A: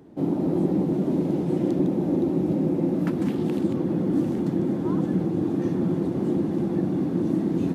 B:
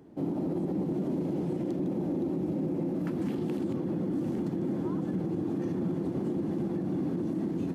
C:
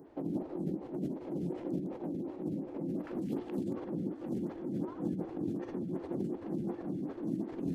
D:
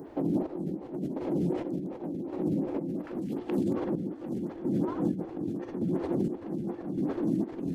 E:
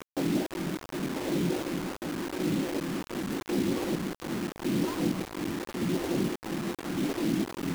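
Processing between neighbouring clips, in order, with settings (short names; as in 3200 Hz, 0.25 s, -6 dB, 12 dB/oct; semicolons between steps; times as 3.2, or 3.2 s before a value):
notch 3700 Hz, Q 24; limiter -19.5 dBFS, peak gain reduction 7.5 dB; gain -4 dB
negative-ratio compressor -33 dBFS, ratio -0.5; photocell phaser 2.7 Hz
chopper 0.86 Hz, depth 60%, duty 40%; in parallel at +2.5 dB: limiter -34 dBFS, peak gain reduction 11 dB; on the sum: gain +3 dB
bit-crush 6-bit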